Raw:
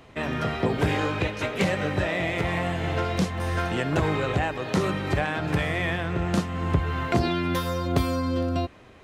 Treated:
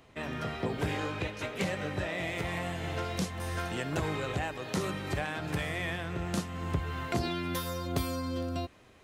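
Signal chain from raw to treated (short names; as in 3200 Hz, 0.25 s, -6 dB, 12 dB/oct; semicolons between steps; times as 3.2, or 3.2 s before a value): high shelf 5100 Hz +5.5 dB, from 2.18 s +11 dB; gain -8.5 dB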